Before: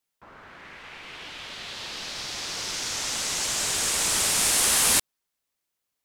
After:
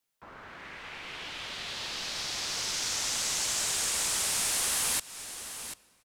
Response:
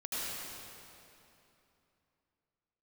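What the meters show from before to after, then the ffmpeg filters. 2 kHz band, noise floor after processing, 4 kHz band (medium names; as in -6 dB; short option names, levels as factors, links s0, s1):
-5.0 dB, -65 dBFS, -4.0 dB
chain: -filter_complex "[0:a]aecho=1:1:740:0.1,asplit=2[s0][s1];[1:a]atrim=start_sample=2205[s2];[s1][s2]afir=irnorm=-1:irlink=0,volume=0.0398[s3];[s0][s3]amix=inputs=2:normalize=0,acrossover=split=180|520|4200[s4][s5][s6][s7];[s4]acompressor=threshold=0.00282:ratio=4[s8];[s5]acompressor=threshold=0.00224:ratio=4[s9];[s6]acompressor=threshold=0.0158:ratio=4[s10];[s7]acompressor=threshold=0.0355:ratio=4[s11];[s8][s9][s10][s11]amix=inputs=4:normalize=0"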